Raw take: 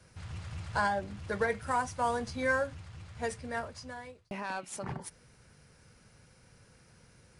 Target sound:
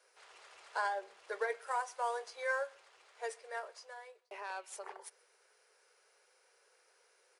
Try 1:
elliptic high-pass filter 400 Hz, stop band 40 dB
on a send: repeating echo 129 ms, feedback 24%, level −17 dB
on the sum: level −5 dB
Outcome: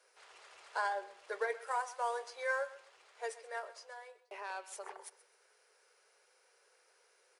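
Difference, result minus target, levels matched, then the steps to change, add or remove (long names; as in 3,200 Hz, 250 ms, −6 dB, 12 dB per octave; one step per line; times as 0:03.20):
echo-to-direct +10 dB
change: repeating echo 129 ms, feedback 24%, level −27 dB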